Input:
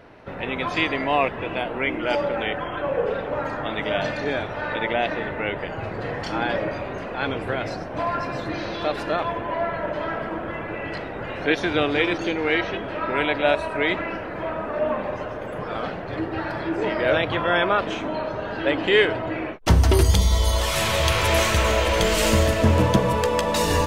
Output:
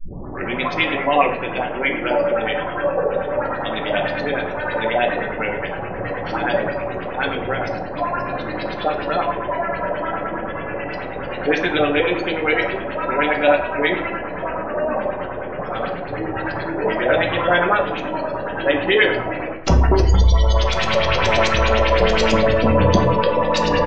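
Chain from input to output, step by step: tape start-up on the opening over 0.56 s; speakerphone echo 130 ms, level -13 dB; LFO low-pass saw up 9.5 Hz 450–6300 Hz; spectral gate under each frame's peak -30 dB strong; de-hum 107.9 Hz, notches 31; on a send at -3 dB: reverberation RT60 0.50 s, pre-delay 4 ms

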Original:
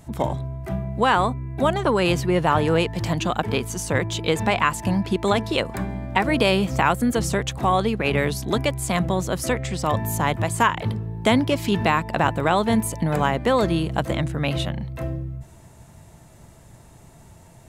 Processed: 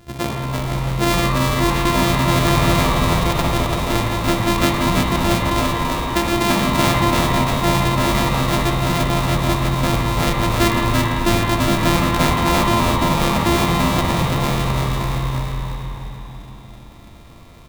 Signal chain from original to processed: sorted samples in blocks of 128 samples; peaking EQ 4.4 kHz +2.5 dB 0.38 oct; spring tank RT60 3.3 s, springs 53 ms, chirp 40 ms, DRR -0.5 dB; formant shift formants -3 st; on a send: frequency-shifting echo 337 ms, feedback 42%, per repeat -86 Hz, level -3 dB

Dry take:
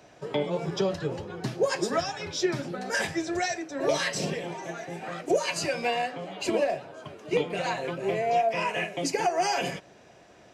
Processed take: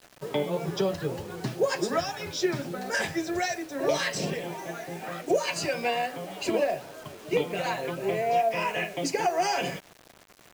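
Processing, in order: treble shelf 8.8 kHz -3.5 dB; bit crusher 8-bit

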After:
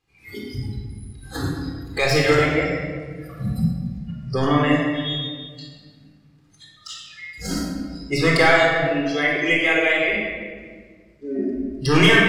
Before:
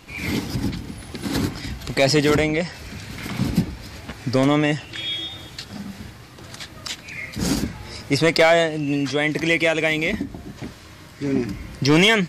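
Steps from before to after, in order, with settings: tracing distortion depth 0.027 ms; spectral noise reduction 23 dB; dynamic bell 1.5 kHz, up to +7 dB, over -35 dBFS, Q 0.88; simulated room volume 2000 m³, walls mixed, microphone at 3.9 m; trim -7.5 dB

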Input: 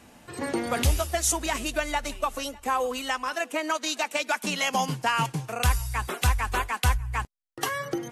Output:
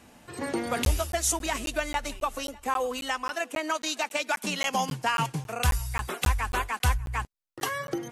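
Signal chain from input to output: crackling interface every 0.27 s, samples 512, zero, from 0.85 s; trim -1.5 dB

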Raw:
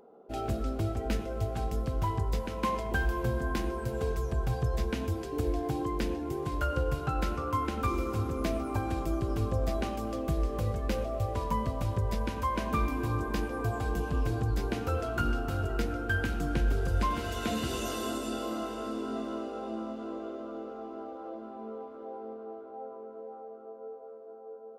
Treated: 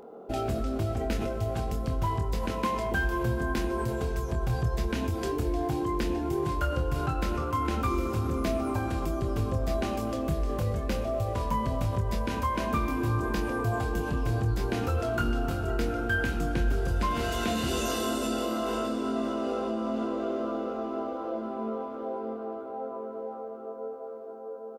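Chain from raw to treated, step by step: in parallel at -1 dB: compressor with a negative ratio -39 dBFS, ratio -1; on the sum: doubling 26 ms -7 dB

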